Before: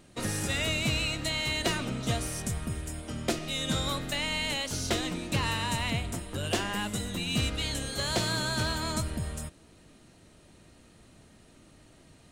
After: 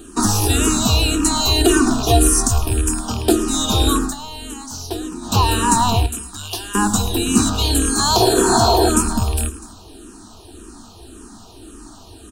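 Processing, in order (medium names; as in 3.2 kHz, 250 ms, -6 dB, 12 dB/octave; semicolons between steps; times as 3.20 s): rattle on loud lows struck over -32 dBFS, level -27 dBFS; 1.40–2.62 s: comb 2.8 ms, depth 71%; 6.06–6.75 s: amplifier tone stack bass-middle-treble 5-5-5; 8.22–8.86 s: spectral replace 360–1900 Hz before; dynamic bell 3.1 kHz, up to -6 dB, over -45 dBFS, Q 1; static phaser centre 560 Hz, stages 6; multi-tap echo 108/249 ms -16.5/-19.5 dB; 4.00–5.36 s: dip -13 dB, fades 0.15 s; loudness maximiser +22.5 dB; barber-pole phaser -1.8 Hz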